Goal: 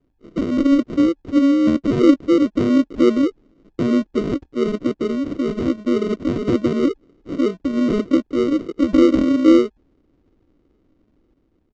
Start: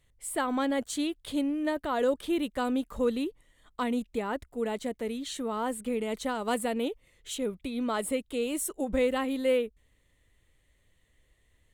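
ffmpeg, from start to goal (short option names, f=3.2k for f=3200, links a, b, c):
-af "dynaudnorm=f=240:g=5:m=5dB,aresample=16000,acrusher=samples=19:mix=1:aa=0.000001,aresample=44100,lowpass=4.6k,equalizer=f=300:w=1.1:g=14.5,volume=-2.5dB"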